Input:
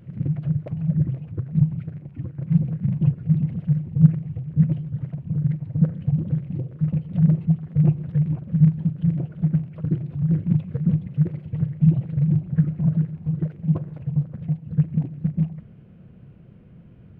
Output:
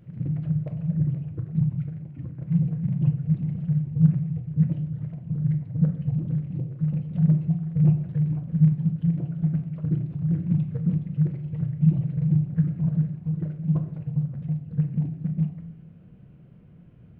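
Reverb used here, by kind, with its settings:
rectangular room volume 180 cubic metres, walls mixed, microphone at 0.45 metres
level −5 dB

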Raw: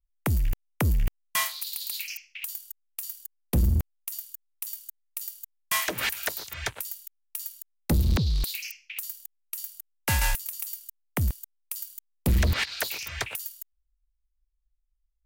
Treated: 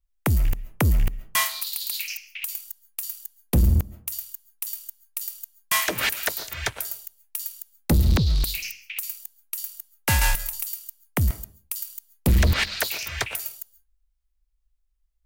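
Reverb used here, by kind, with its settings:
comb and all-pass reverb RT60 0.42 s, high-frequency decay 0.45×, pre-delay 95 ms, DRR 17.5 dB
level +4 dB

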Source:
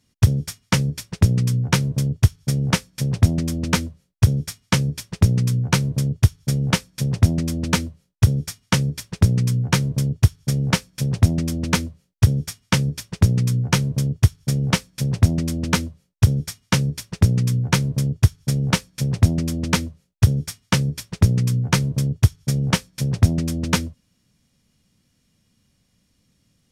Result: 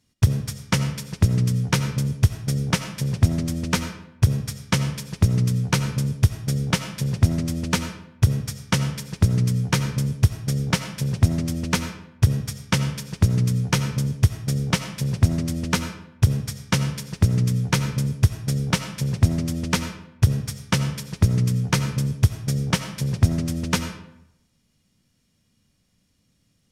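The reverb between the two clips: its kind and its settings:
comb and all-pass reverb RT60 0.8 s, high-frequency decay 0.7×, pre-delay 45 ms, DRR 9 dB
level −2.5 dB

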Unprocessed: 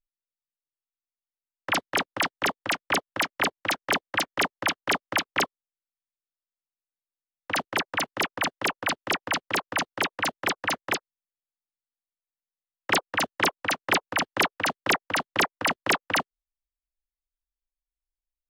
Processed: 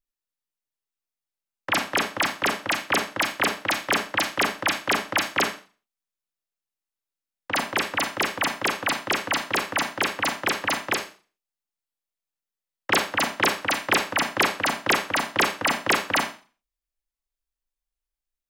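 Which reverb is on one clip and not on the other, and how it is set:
four-comb reverb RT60 0.37 s, combs from 28 ms, DRR 5.5 dB
level +1.5 dB

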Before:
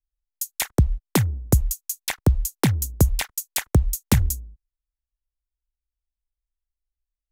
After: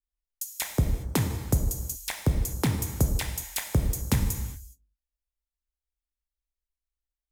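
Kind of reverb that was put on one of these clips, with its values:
reverb whose tail is shaped and stops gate 440 ms falling, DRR 4 dB
level −6.5 dB

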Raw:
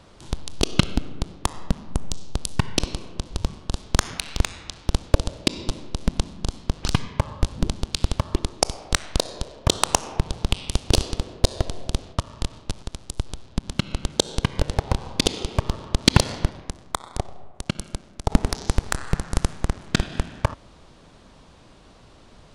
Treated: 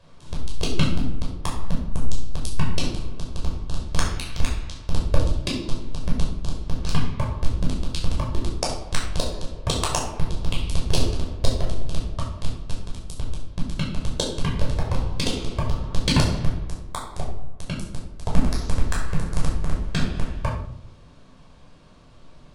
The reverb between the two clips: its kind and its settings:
rectangular room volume 820 cubic metres, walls furnished, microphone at 5.4 metres
level −10 dB

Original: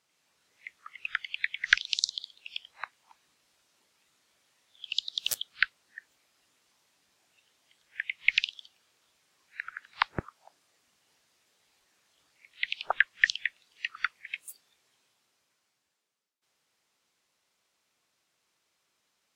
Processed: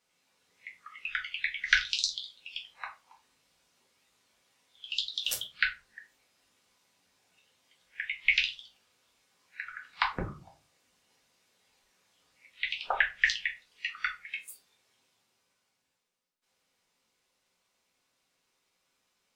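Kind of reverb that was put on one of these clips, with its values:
rectangular room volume 130 cubic metres, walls furnished, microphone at 1.8 metres
level −4 dB

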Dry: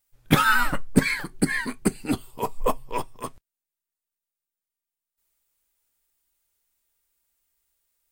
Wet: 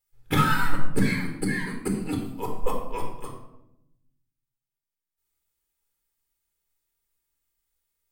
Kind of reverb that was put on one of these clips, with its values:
rectangular room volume 2,400 cubic metres, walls furnished, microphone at 4.1 metres
level −8 dB

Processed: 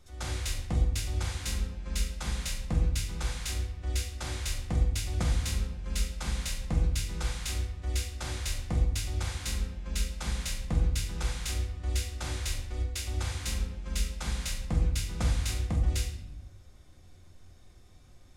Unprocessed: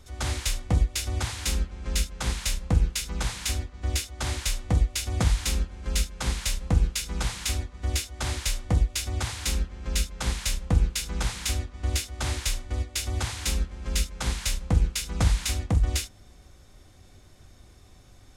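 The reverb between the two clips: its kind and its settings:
rectangular room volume 250 cubic metres, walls mixed, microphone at 0.91 metres
level −8 dB

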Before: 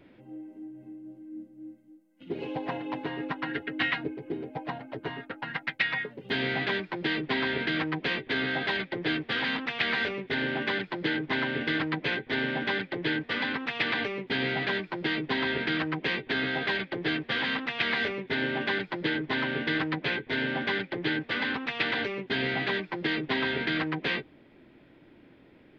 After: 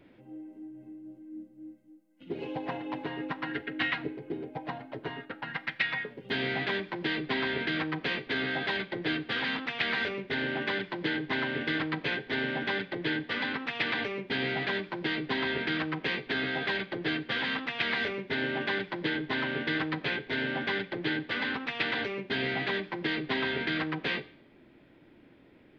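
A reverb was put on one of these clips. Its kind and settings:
four-comb reverb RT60 0.58 s, combs from 29 ms, DRR 16 dB
level −2 dB

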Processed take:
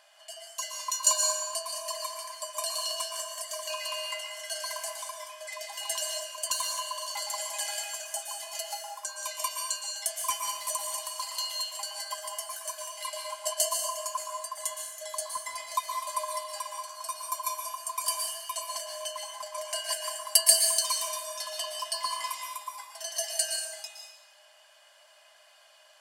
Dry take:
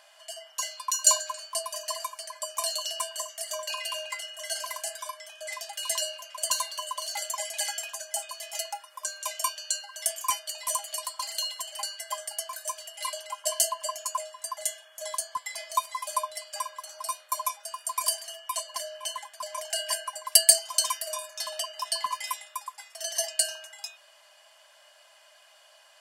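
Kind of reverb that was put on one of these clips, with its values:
dense smooth reverb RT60 0.99 s, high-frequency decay 0.9×, pre-delay 105 ms, DRR 1.5 dB
level −3.5 dB

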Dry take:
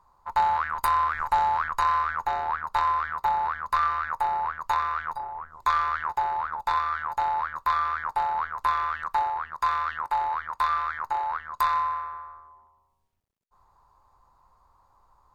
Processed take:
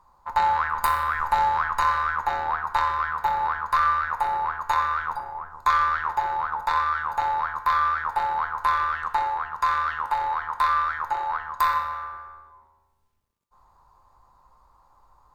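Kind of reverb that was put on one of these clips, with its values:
coupled-rooms reverb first 0.67 s, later 2 s, from −24 dB, DRR 7 dB
level +2.5 dB

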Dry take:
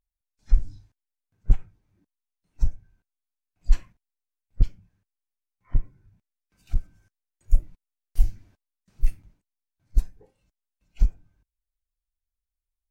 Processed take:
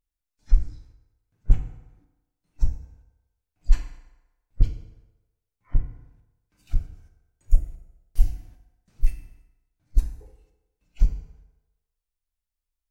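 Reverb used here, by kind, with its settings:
feedback delay network reverb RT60 1.1 s, low-frequency decay 0.75×, high-frequency decay 0.7×, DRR 4.5 dB

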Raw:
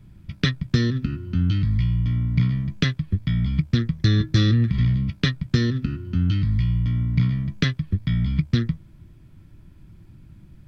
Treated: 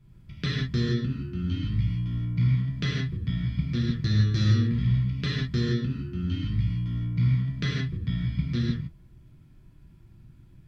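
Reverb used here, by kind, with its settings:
reverb whose tail is shaped and stops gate 190 ms flat, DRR −4.5 dB
level −11 dB

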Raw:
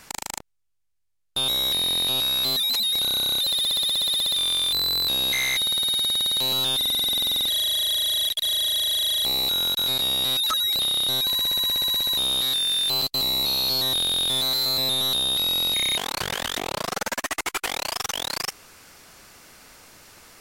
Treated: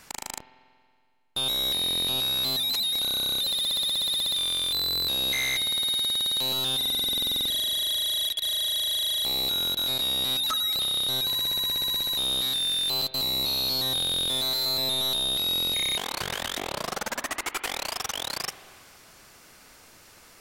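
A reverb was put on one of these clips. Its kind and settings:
spring reverb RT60 2.1 s, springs 46 ms, chirp 75 ms, DRR 12.5 dB
level −3.5 dB

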